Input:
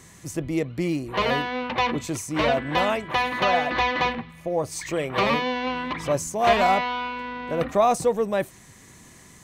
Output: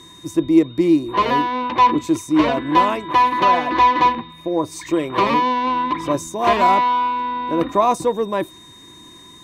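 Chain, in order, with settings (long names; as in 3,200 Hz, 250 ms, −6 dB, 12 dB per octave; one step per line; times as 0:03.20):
steady tone 3,700 Hz −42 dBFS
harmonic generator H 7 −36 dB, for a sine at −7.5 dBFS
hollow resonant body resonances 320/1,000 Hz, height 15 dB, ringing for 50 ms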